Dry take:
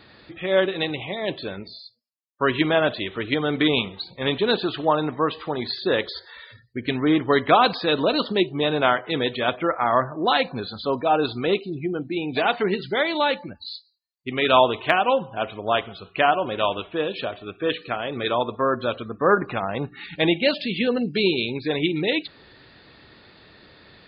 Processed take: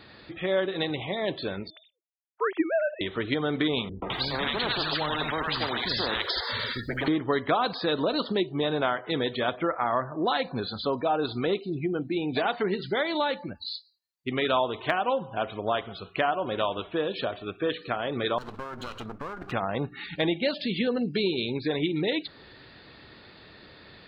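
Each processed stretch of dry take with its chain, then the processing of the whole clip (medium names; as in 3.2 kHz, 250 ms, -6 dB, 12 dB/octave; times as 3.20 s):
1.70–3.01 s: formants replaced by sine waves + low-pass 2.7 kHz
3.89–7.08 s: three bands offset in time lows, mids, highs 130/210 ms, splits 220/1200 Hz + spectrum-flattening compressor 4:1
18.38–19.52 s: comb filter that takes the minimum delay 0.7 ms + compression 16:1, threshold -32 dBFS
whole clip: dynamic bell 2.6 kHz, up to -6 dB, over -43 dBFS, Q 3.5; compression 2.5:1, threshold -25 dBFS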